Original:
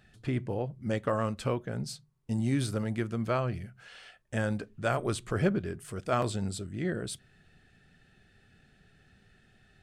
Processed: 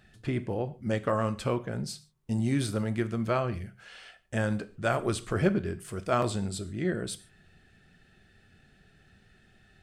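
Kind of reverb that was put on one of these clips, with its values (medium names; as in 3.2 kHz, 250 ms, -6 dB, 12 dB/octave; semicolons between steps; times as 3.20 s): gated-style reverb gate 170 ms falling, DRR 11.5 dB; trim +1.5 dB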